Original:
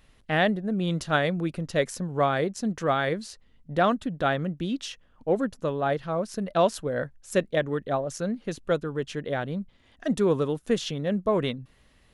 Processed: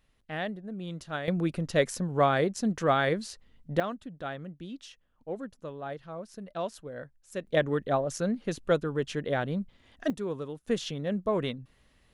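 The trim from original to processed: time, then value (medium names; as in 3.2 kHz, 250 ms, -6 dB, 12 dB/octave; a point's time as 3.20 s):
-11 dB
from 1.28 s 0 dB
from 3.80 s -12 dB
from 7.47 s 0 dB
from 10.10 s -11 dB
from 10.68 s -4 dB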